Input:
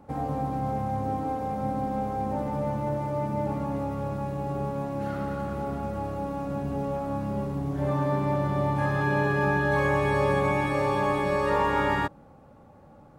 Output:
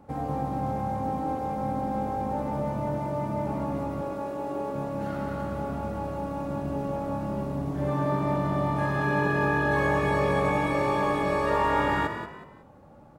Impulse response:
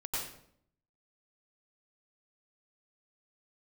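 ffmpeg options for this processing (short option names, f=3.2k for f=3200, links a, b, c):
-filter_complex "[0:a]asettb=1/sr,asplit=3[a][b][c];[a]atrim=end=4.014[d];[b]atrim=start=4.01:end=4.74,asetpts=PTS-STARTPTS,afade=t=in:d=0.004:c=qsin,afade=t=out:st=0.726:d=0.004:c=qsin,lowshelf=f=210:t=q:w=1.5:g=-11.5[e];[c]atrim=start=4.736[f];[d][e]acrossfade=d=0.004:c1=hsin:c2=qsin[g];[g][f]acrossfade=d=0.004:c1=qsin:c2=hsin,asplit=4[h][i][j][k];[i]adelay=184,afreqshift=47,volume=-9dB[l];[j]adelay=368,afreqshift=94,volume=-19.5dB[m];[k]adelay=552,afreqshift=141,volume=-29.9dB[n];[h][l][m][n]amix=inputs=4:normalize=0,asplit=2[o][p];[1:a]atrim=start_sample=2205[q];[p][q]afir=irnorm=-1:irlink=0,volume=-15.5dB[r];[o][r]amix=inputs=2:normalize=0,volume=-1.5dB"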